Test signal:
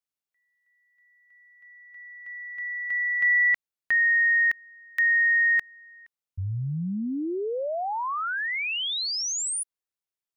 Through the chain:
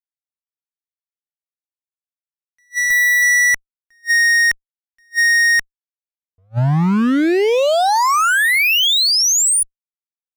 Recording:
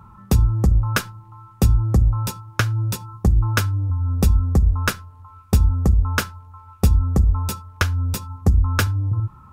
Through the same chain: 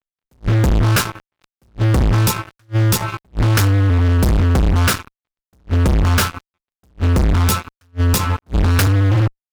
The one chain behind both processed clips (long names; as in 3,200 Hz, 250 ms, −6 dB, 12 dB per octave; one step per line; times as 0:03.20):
fuzz pedal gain 35 dB, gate −35 dBFS
level that may rise only so fast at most 490 dB per second
level +1 dB